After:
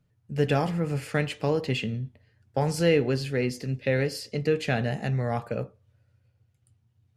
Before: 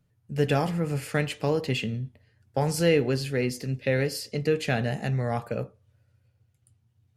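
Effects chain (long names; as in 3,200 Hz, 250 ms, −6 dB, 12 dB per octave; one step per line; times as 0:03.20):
high-shelf EQ 9,600 Hz −9.5 dB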